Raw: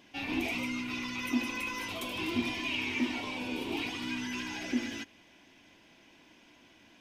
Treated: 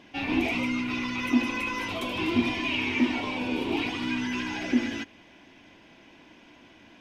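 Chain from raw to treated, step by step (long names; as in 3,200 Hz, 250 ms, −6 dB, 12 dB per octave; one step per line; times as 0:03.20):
low-pass filter 2,700 Hz 6 dB per octave
level +7.5 dB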